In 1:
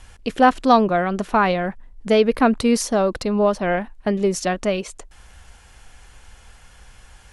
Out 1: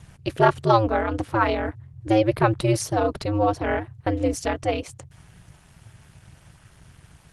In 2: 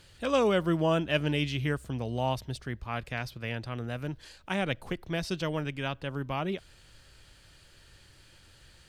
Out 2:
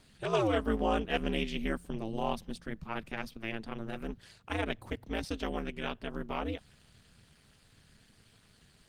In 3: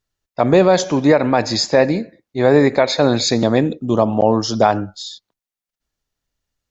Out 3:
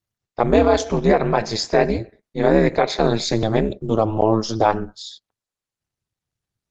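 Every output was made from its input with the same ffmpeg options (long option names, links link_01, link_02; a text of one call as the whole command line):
ffmpeg -i in.wav -af "aeval=exprs='val(0)*sin(2*PI*110*n/s)':channel_layout=same" -ar 48000 -c:a libopus -b:a 20k out.opus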